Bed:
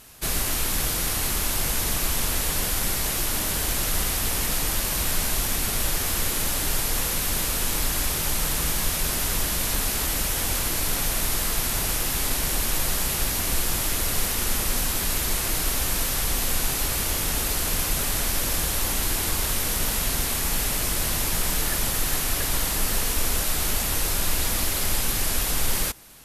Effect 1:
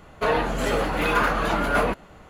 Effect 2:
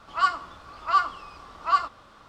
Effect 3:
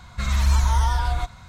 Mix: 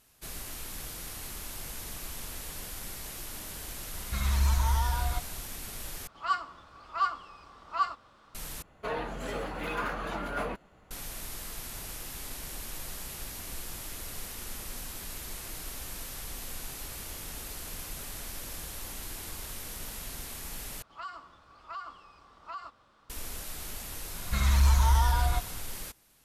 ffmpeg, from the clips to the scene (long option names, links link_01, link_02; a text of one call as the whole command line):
ffmpeg -i bed.wav -i cue0.wav -i cue1.wav -i cue2.wav -filter_complex "[3:a]asplit=2[link_01][link_02];[2:a]asplit=2[link_03][link_04];[0:a]volume=-15.5dB[link_05];[link_04]acompressor=threshold=-25dB:ratio=6:attack=3.2:release=140:knee=1:detection=peak[link_06];[link_02]acontrast=78[link_07];[link_05]asplit=4[link_08][link_09][link_10][link_11];[link_08]atrim=end=6.074[link_12];[link_03]atrim=end=2.28,asetpts=PTS-STARTPTS,volume=-7dB[link_13];[link_09]atrim=start=8.346:end=8.624[link_14];[1:a]atrim=end=2.29,asetpts=PTS-STARTPTS,volume=-12dB[link_15];[link_10]atrim=start=10.906:end=20.824[link_16];[link_06]atrim=end=2.28,asetpts=PTS-STARTPTS,volume=-11.5dB[link_17];[link_11]atrim=start=23.096[link_18];[link_01]atrim=end=1.48,asetpts=PTS-STARTPTS,volume=-7dB,afade=type=in:duration=0.004:curve=hsin,afade=type=out:start_time=1.476:duration=0.004:curve=hsin,adelay=3940[link_19];[link_07]atrim=end=1.48,asetpts=PTS-STARTPTS,volume=-9.5dB,afade=type=in:duration=0.004:curve=hsin,afade=type=out:start_time=1.476:duration=0.004:curve=hsin,adelay=24140[link_20];[link_12][link_13]acrossfade=duration=0.004:curve1=hsin:curve2=hsin[link_21];[link_21][link_14]acrossfade=duration=0.004:curve1=hsin:curve2=hsin[link_22];[link_22][link_15]acrossfade=duration=0.004:curve1=hsin:curve2=hsin[link_23];[link_23][link_16]acrossfade=duration=0.004:curve1=hsin:curve2=hsin[link_24];[link_24][link_17]acrossfade=duration=0.004:curve1=hsin:curve2=hsin[link_25];[link_25][link_18]acrossfade=duration=0.004:curve1=hsin:curve2=hsin[link_26];[link_26][link_19][link_20]amix=inputs=3:normalize=0" out.wav